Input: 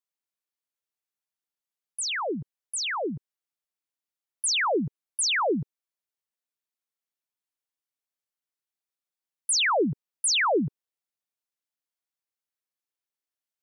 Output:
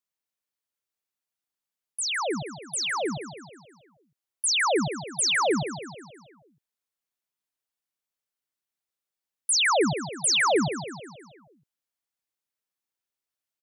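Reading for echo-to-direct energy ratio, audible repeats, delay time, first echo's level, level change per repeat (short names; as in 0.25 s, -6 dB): -9.0 dB, 5, 0.159 s, -10.5 dB, -5.5 dB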